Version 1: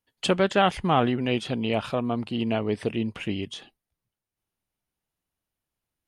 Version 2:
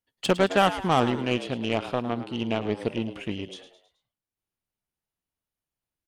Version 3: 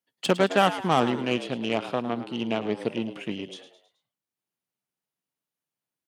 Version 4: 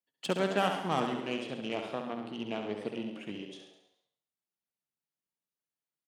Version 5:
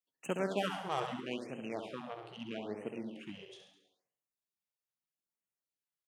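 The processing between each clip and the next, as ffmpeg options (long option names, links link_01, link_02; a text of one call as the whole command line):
ffmpeg -i in.wav -filter_complex "[0:a]aeval=exprs='0.376*(cos(1*acos(clip(val(0)/0.376,-1,1)))-cos(1*PI/2))+0.0188*(cos(5*acos(clip(val(0)/0.376,-1,1)))-cos(5*PI/2))+0.0376*(cos(7*acos(clip(val(0)/0.376,-1,1)))-cos(7*PI/2))':channel_layout=same,asplit=5[link_01][link_02][link_03][link_04][link_05];[link_02]adelay=107,afreqshift=87,volume=-13dB[link_06];[link_03]adelay=214,afreqshift=174,volume=-19.9dB[link_07];[link_04]adelay=321,afreqshift=261,volume=-26.9dB[link_08];[link_05]adelay=428,afreqshift=348,volume=-33.8dB[link_09];[link_01][link_06][link_07][link_08][link_09]amix=inputs=5:normalize=0" out.wav
ffmpeg -i in.wav -af "highpass=frequency=130:width=0.5412,highpass=frequency=130:width=1.3066" out.wav
ffmpeg -i in.wav -filter_complex "[0:a]bandreject=frequency=60:width_type=h:width=6,bandreject=frequency=120:width_type=h:width=6,asplit=2[link_01][link_02];[link_02]aecho=0:1:68|136|204|272|340|408|476:0.473|0.251|0.133|0.0704|0.0373|0.0198|0.0105[link_03];[link_01][link_03]amix=inputs=2:normalize=0,volume=-9dB" out.wav
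ffmpeg -i in.wav -af "afftfilt=real='re*(1-between(b*sr/1024,220*pow(4500/220,0.5+0.5*sin(2*PI*0.78*pts/sr))/1.41,220*pow(4500/220,0.5+0.5*sin(2*PI*0.78*pts/sr))*1.41))':imag='im*(1-between(b*sr/1024,220*pow(4500/220,0.5+0.5*sin(2*PI*0.78*pts/sr))/1.41,220*pow(4500/220,0.5+0.5*sin(2*PI*0.78*pts/sr))*1.41))':win_size=1024:overlap=0.75,volume=-4.5dB" out.wav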